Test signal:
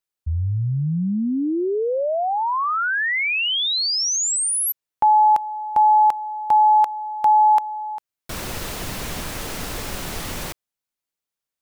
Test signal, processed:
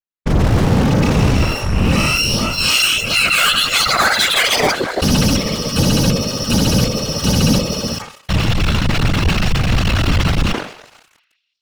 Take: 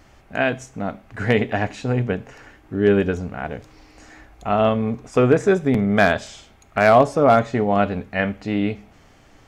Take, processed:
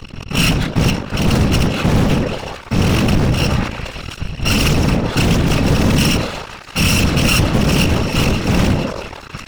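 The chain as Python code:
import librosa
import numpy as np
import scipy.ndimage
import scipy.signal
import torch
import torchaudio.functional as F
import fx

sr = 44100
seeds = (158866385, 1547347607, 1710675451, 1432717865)

p1 = fx.bit_reversed(x, sr, seeds[0], block=128)
p2 = scipy.signal.sosfilt(scipy.signal.butter(4, 3800.0, 'lowpass', fs=sr, output='sos'), p1)
p3 = fx.low_shelf(p2, sr, hz=67.0, db=7.0)
p4 = p3 + fx.echo_stepped(p3, sr, ms=168, hz=300.0, octaves=0.7, feedback_pct=70, wet_db=-8.0, dry=0)
p5 = fx.dynamic_eq(p4, sr, hz=130.0, q=0.7, threshold_db=-37.0, ratio=4.0, max_db=7)
p6 = fx.rider(p5, sr, range_db=4, speed_s=2.0)
p7 = p5 + (p6 * librosa.db_to_amplitude(-2.5))
p8 = fx.leveller(p7, sr, passes=5)
p9 = np.clip(p8, -10.0 ** (-10.0 / 20.0), 10.0 ** (-10.0 / 20.0))
p10 = fx.whisperise(p9, sr, seeds[1])
p11 = fx.sustainer(p10, sr, db_per_s=100.0)
y = p11 * librosa.db_to_amplitude(-2.5)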